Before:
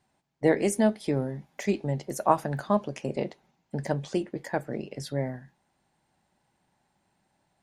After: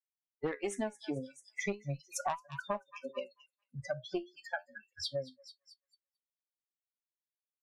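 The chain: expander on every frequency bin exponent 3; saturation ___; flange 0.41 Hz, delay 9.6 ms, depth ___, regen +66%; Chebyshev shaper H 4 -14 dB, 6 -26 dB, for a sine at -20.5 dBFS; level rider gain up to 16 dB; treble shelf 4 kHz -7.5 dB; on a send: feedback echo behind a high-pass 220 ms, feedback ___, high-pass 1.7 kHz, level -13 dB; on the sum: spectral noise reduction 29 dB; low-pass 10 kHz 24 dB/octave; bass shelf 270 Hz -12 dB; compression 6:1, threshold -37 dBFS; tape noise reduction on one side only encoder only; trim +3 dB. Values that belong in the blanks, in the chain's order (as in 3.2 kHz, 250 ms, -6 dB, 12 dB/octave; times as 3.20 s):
-17 dBFS, 9.1 ms, 38%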